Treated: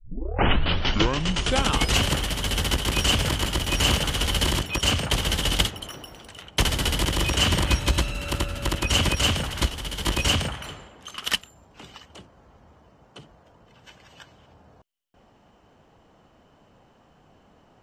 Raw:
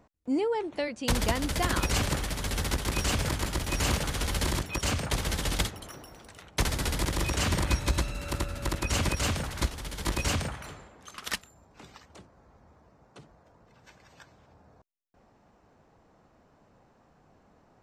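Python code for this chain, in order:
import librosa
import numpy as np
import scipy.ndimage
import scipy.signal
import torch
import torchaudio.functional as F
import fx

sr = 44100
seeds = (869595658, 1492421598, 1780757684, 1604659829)

y = fx.tape_start_head(x, sr, length_s=2.09)
y = fx.peak_eq(y, sr, hz=3000.0, db=12.5, octaves=0.23)
y = y * 10.0 ** (4.5 / 20.0)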